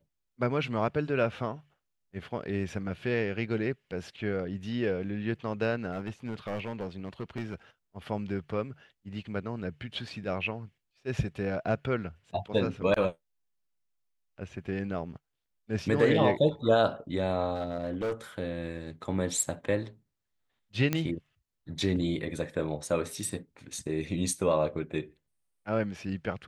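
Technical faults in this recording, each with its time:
5.92–7.54 s: clipped -29 dBFS
17.55–18.13 s: clipped -27.5 dBFS
20.93 s: pop -13 dBFS

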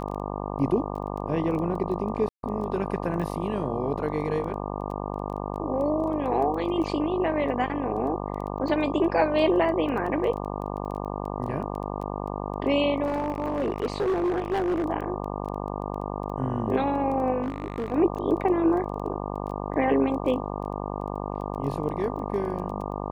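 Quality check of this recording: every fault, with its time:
buzz 50 Hz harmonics 24 -32 dBFS
crackle 10 per s -33 dBFS
2.29–2.43 s: dropout 142 ms
13.05–14.84 s: clipped -21.5 dBFS
17.42–17.93 s: clipped -25 dBFS

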